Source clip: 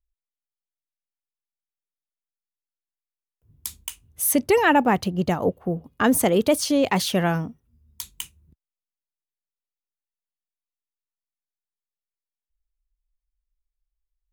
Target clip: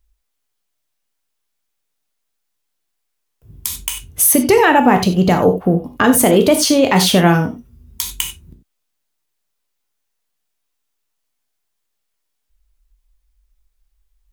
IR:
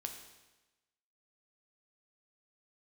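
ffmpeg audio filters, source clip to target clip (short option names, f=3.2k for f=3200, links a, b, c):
-filter_complex "[0:a]acompressor=threshold=-32dB:ratio=2[a];[1:a]atrim=start_sample=2205,atrim=end_sample=4410[b];[a][b]afir=irnorm=-1:irlink=0,alimiter=level_in=20.5dB:limit=-1dB:release=50:level=0:latency=1,volume=-1dB"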